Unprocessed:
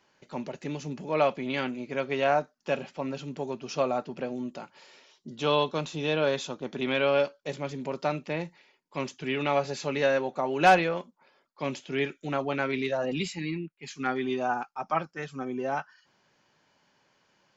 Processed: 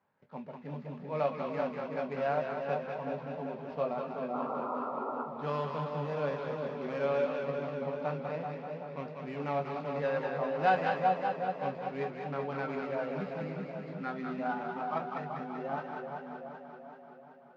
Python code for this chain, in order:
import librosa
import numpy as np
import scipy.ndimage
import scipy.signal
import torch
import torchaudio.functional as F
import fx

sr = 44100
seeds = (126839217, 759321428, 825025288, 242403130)

p1 = scipy.signal.medfilt(x, 15)
p2 = p1 + fx.echo_split(p1, sr, split_hz=890.0, low_ms=379, high_ms=197, feedback_pct=52, wet_db=-5, dry=0)
p3 = fx.spec_paint(p2, sr, seeds[0], shape='noise', start_s=4.33, length_s=0.92, low_hz=230.0, high_hz=1400.0, level_db=-30.0)
p4 = scipy.signal.sosfilt(scipy.signal.butter(2, 100.0, 'highpass', fs=sr, output='sos'), p3)
p5 = fx.peak_eq(p4, sr, hz=340.0, db=-14.5, octaves=0.28)
p6 = fx.chorus_voices(p5, sr, voices=6, hz=0.51, base_ms=20, depth_ms=1.6, mix_pct=30)
p7 = fx.air_absorb(p6, sr, metres=280.0)
p8 = fx.echo_warbled(p7, sr, ms=192, feedback_pct=76, rate_hz=2.8, cents=108, wet_db=-8.5)
y = p8 * 10.0 ** (-3.0 / 20.0)